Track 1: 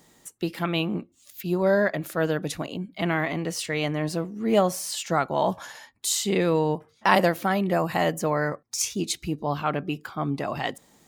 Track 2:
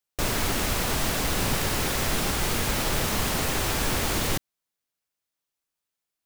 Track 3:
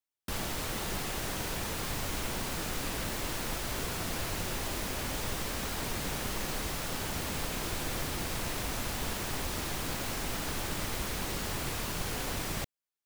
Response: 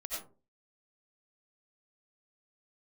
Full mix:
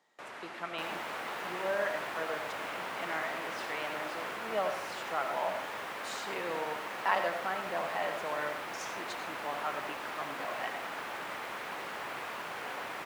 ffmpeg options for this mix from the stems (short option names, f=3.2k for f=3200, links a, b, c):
-filter_complex "[0:a]equalizer=f=5.1k:w=0.95:g=7,volume=-11dB,asplit=2[a][b];[b]volume=-4.5dB[c];[1:a]lowpass=9.7k,volume=-12.5dB[d];[2:a]adelay=500,volume=2.5dB[e];[3:a]atrim=start_sample=2205[f];[c][f]afir=irnorm=-1:irlink=0[g];[a][d][e][g]amix=inputs=4:normalize=0,highpass=210,acrossover=split=550 2600:gain=0.2 1 0.112[h][i][j];[h][i][j]amix=inputs=3:normalize=0"